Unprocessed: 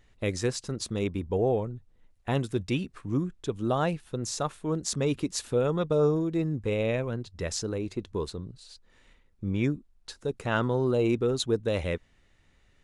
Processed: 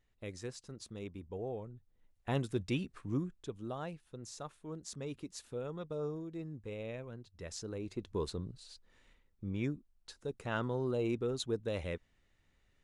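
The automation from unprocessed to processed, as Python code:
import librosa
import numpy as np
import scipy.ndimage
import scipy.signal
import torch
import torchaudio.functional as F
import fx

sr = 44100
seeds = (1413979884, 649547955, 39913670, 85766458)

y = fx.gain(x, sr, db=fx.line((1.52, -15.0), (2.36, -6.0), (3.1, -6.0), (3.76, -15.0), (7.3, -15.0), (8.38, -2.5), (9.5, -9.0)))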